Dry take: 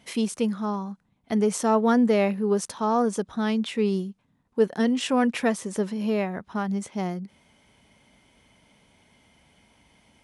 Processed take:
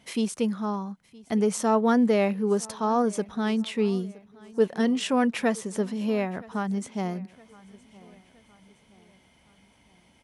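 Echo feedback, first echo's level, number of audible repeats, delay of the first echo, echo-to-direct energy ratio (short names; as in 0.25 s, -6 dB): 47%, -23.0 dB, 2, 0.967 s, -22.0 dB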